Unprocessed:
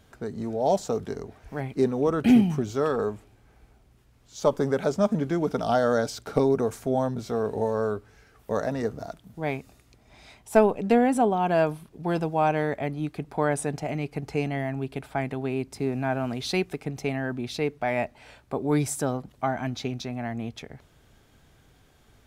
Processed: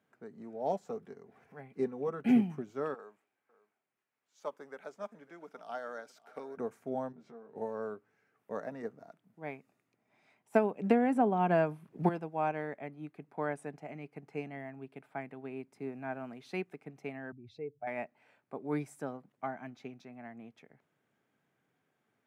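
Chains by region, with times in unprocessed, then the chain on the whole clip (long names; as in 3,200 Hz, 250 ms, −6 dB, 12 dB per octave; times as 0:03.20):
0:00.72–0:02.41: notch comb filter 310 Hz + upward compression, threshold −32 dBFS
0:02.94–0:06.57: high-pass filter 1,100 Hz 6 dB per octave + single-tap delay 551 ms −18.5 dB
0:07.12–0:07.56: downward compressor 3 to 1, threshold −37 dBFS + high-frequency loss of the air 78 metres + double-tracking delay 13 ms −2.5 dB
0:10.54–0:12.09: low-shelf EQ 140 Hz +8.5 dB + multiband upward and downward compressor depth 100%
0:17.32–0:17.87: expanding power law on the bin magnitudes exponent 1.8 + low shelf with overshoot 130 Hz +14 dB, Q 3
whole clip: high-pass filter 150 Hz 24 dB per octave; high shelf with overshoot 2,900 Hz −7 dB, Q 1.5; expander for the loud parts 1.5 to 1, over −35 dBFS; level −6.5 dB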